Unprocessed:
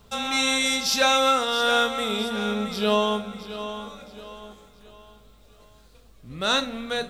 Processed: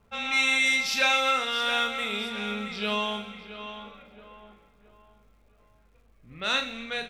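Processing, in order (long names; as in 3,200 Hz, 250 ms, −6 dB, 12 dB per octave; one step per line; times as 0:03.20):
low-pass that shuts in the quiet parts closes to 1,200 Hz, open at −22 dBFS
parametric band 2,300 Hz +13 dB 0.94 octaves
surface crackle 360 per second −54 dBFS
double-tracking delay 39 ms −9 dB
delay with a high-pass on its return 123 ms, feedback 56%, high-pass 2,200 Hz, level −14.5 dB
level −9 dB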